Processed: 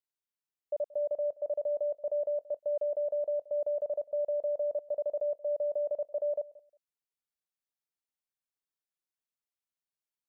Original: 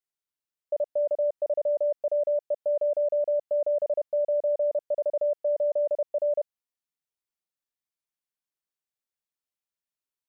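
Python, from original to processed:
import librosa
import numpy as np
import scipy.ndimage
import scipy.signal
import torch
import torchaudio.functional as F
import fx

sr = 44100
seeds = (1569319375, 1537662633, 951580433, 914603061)

y = fx.echo_feedback(x, sr, ms=178, feedback_pct=19, wet_db=-20.5)
y = y * librosa.db_to_amplitude(-5.5)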